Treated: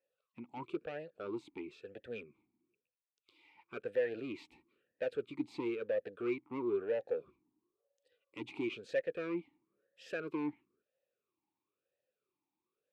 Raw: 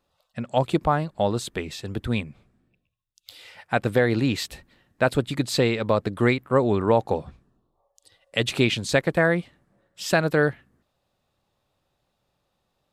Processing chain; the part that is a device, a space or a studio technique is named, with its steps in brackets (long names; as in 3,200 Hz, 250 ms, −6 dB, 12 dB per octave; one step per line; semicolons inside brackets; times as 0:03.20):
talk box (tube saturation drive 20 dB, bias 0.4; formant filter swept between two vowels e-u 1 Hz)
level −1.5 dB